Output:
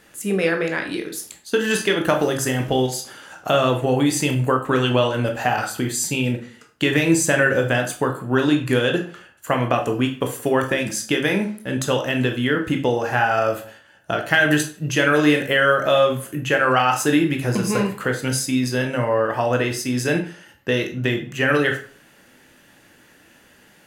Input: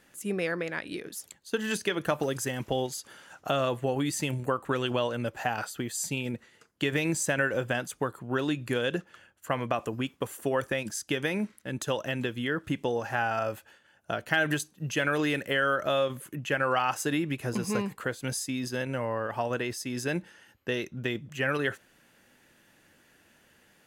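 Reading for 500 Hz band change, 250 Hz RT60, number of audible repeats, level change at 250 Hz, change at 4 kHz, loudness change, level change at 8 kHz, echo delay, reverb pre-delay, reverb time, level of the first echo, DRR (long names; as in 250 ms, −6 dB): +10.0 dB, 0.45 s, no echo audible, +11.0 dB, +9.5 dB, +10.0 dB, +9.0 dB, no echo audible, 15 ms, 0.45 s, no echo audible, 3.5 dB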